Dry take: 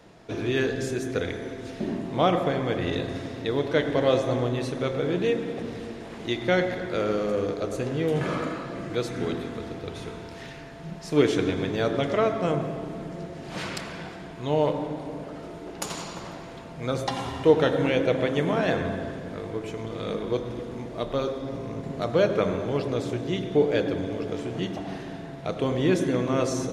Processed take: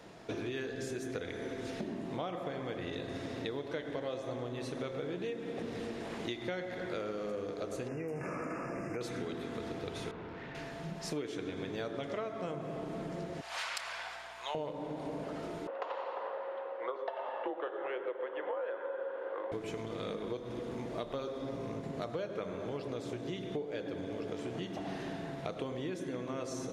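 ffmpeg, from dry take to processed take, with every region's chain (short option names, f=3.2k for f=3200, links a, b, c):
-filter_complex "[0:a]asettb=1/sr,asplit=3[a][b][c];[a]atrim=end=7.884[d];[b]atrim=start=7.88:end=9.01,asetpts=PTS-STARTPTS,afade=t=in:d=0.004:c=qsin,afade=t=out:st=1.126:d=0.004:c=qsin,acompressor=threshold=-26dB:ratio=6:attack=3.2:release=140:knee=1:detection=peak,asuperstop=centerf=3700:order=20:qfactor=1.8[e];[c]atrim=start=9.006[f];[d][e]acrossfade=d=0.004:c1=hsin:c2=qsin[g];[g][f]acrossfade=d=0.004:c1=qsin:c2=hsin,asettb=1/sr,asplit=3[h][i][j];[h]atrim=end=10.114[k];[i]atrim=start=10.11:end=10.55,asetpts=PTS-STARTPTS,afade=t=in:d=0.004:c=qsin,afade=t=out:st=0.436:d=0.004:c=qsin,bandreject=f=660:w=12,asoftclip=type=hard:threshold=-40dB,lowpass=2.1k[l];[j]atrim=start=10.546[m];[k][l]acrossfade=d=0.004:c1=hsin:c2=qsin[n];[n][m]acrossfade=d=0.004:c1=qsin:c2=hsin,asettb=1/sr,asplit=3[o][p][q];[o]atrim=end=13.414[r];[p]atrim=start=13.41:end=14.55,asetpts=PTS-STARTPTS,afade=t=in:d=0.004:c=qsin,afade=t=out:st=1.136:d=0.004:c=qsin,highpass=f=750:w=0.5412,highpass=f=750:w=1.3066,aeval=exprs='val(0)+0.000708*(sin(2*PI*60*n/s)+sin(2*PI*2*60*n/s)/2+sin(2*PI*3*60*n/s)/3+sin(2*PI*4*60*n/s)/4+sin(2*PI*5*60*n/s)/5)':c=same[s];[q]atrim=start=14.546[t];[r][s]acrossfade=d=0.004:c1=hsin:c2=qsin[u];[u][t]acrossfade=d=0.004:c1=qsin:c2=hsin,asettb=1/sr,asplit=3[v][w][x];[v]atrim=end=15.674[y];[w]atrim=start=15.67:end=19.52,asetpts=PTS-STARTPTS,afade=t=in:d=0.004:c=qsin,afade=t=out:st=3.846:d=0.004:c=qsin,afreqshift=-130,highpass=f=460:w=0.5412,highpass=f=460:w=1.3066,equalizer=f=520:t=q:w=4:g=10,equalizer=f=1k:t=q:w=4:g=6,equalizer=f=2.3k:t=q:w=4:g=-8,lowpass=f=2.5k:w=0.5412,lowpass=f=2.5k:w=1.3066[z];[x]atrim=start=19.516[aa];[y][z]acrossfade=d=0.004:c1=hsin:c2=qsin[ab];[ab][aa]acrossfade=d=0.004:c1=qsin:c2=hsin,acompressor=threshold=-34dB:ratio=12,lowshelf=f=130:g=-7"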